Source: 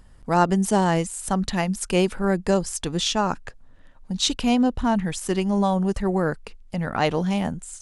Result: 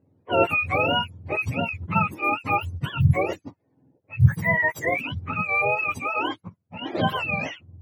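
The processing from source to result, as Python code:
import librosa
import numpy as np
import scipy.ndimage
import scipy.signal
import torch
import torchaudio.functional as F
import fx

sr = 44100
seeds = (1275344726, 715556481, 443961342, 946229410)

y = fx.octave_mirror(x, sr, pivot_hz=690.0)
y = fx.env_lowpass(y, sr, base_hz=530.0, full_db=-21.0)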